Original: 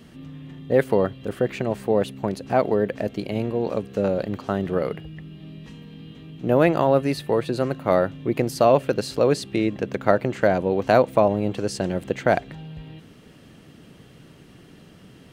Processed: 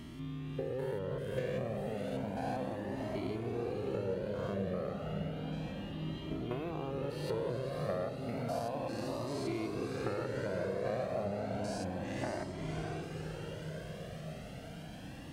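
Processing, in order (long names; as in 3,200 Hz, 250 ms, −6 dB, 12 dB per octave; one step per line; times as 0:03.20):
spectrum averaged block by block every 200 ms
downward compressor 12 to 1, threshold −34 dBFS, peak gain reduction 20 dB
on a send: feedback delay with all-pass diffusion 575 ms, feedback 66%, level −4.5 dB
on the sum: flanger whose copies keep moving one way rising 0.32 Hz
level +4.5 dB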